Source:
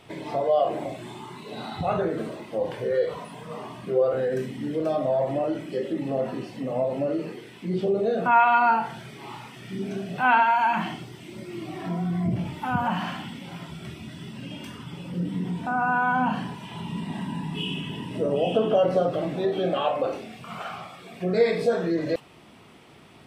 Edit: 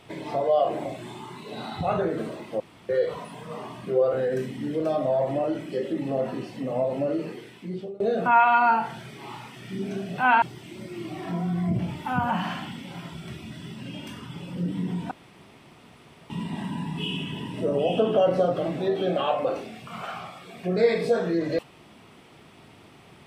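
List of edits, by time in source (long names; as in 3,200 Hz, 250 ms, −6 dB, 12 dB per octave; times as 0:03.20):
0:02.60–0:02.89: fill with room tone
0:07.42–0:08.00: fade out, to −24 dB
0:10.42–0:10.99: remove
0:15.68–0:16.87: fill with room tone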